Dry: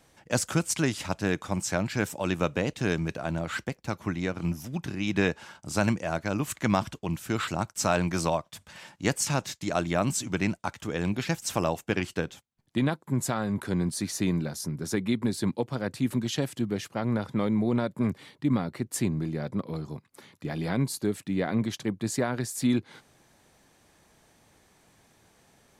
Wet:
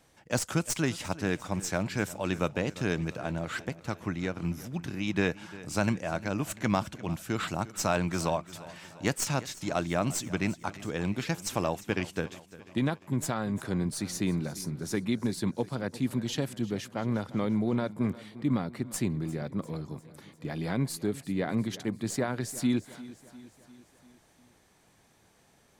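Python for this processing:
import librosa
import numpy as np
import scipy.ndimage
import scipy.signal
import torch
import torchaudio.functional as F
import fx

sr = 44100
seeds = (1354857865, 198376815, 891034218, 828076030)

p1 = fx.tracing_dist(x, sr, depth_ms=0.024)
p2 = p1 + fx.echo_feedback(p1, sr, ms=349, feedback_pct=56, wet_db=-18, dry=0)
y = p2 * 10.0 ** (-2.5 / 20.0)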